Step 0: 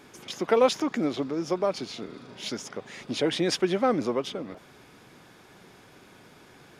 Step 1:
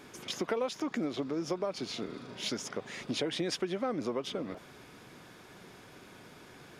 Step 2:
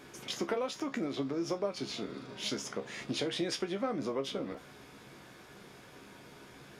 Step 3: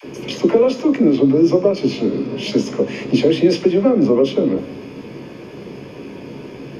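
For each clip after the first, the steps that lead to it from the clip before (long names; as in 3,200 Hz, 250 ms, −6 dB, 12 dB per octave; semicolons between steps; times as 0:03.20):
downward compressor 6 to 1, threshold −30 dBFS, peak gain reduction 14 dB; notch filter 820 Hz, Q 23
tuned comb filter 68 Hz, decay 0.2 s, harmonics all, mix 80%; level +4.5 dB
in parallel at −8 dB: soft clipping −37.5 dBFS, distortion −7 dB; on the sum: all-pass dispersion lows, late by 46 ms, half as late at 510 Hz; convolution reverb RT60 1.1 s, pre-delay 3 ms, DRR 14 dB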